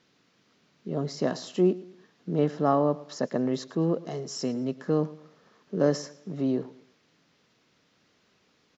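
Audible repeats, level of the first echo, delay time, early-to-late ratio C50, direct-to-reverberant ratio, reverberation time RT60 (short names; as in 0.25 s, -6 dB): 2, -19.0 dB, 0.111 s, none, none, none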